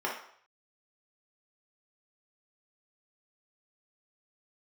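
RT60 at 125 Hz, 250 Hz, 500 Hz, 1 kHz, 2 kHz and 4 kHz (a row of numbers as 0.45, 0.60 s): 0.65, 0.45, 0.60, 0.65, 0.55, 0.55 s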